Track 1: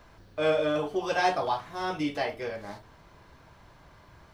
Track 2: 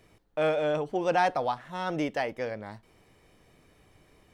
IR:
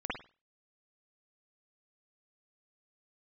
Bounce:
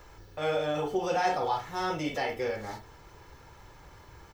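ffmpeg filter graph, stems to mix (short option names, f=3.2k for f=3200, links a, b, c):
-filter_complex "[0:a]aecho=1:1:2.3:0.53,volume=1dB[a];[1:a]volume=-1,volume=-10dB,asplit=3[b][c][d];[c]volume=-3.5dB[e];[d]apad=whole_len=191292[f];[a][f]sidechaincompress=threshold=-40dB:ratio=8:attack=20:release=125[g];[2:a]atrim=start_sample=2205[h];[e][h]afir=irnorm=-1:irlink=0[i];[g][b][i]amix=inputs=3:normalize=0,aexciter=amount=1.1:drive=7.5:freq=5.8k"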